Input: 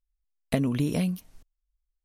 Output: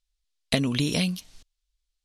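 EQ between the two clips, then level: LPF 8400 Hz 12 dB/oct; high shelf 2500 Hz +11 dB; bell 3800 Hz +7.5 dB 1.2 oct; 0.0 dB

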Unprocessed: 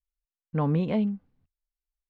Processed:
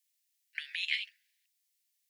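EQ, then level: steep high-pass 1700 Hz 96 dB/oct; high shelf 2300 Hz +10.5 dB; +7.5 dB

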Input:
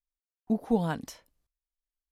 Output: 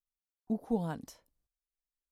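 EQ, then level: bell 2400 Hz -6.5 dB 1.9 oct; -5.5 dB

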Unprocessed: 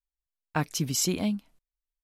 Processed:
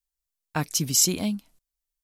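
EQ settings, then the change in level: tone controls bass +1 dB, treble +9 dB; 0.0 dB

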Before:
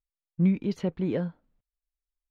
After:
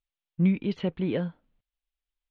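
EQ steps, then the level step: synth low-pass 3200 Hz, resonance Q 2.3; 0.0 dB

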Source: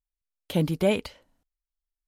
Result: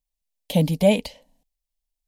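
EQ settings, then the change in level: fixed phaser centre 360 Hz, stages 6; +7.0 dB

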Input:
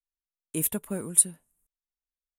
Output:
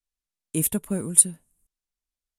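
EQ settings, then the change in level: LPF 11000 Hz 12 dB/oct; low shelf 370 Hz +10 dB; high shelf 2800 Hz +7.5 dB; -1.5 dB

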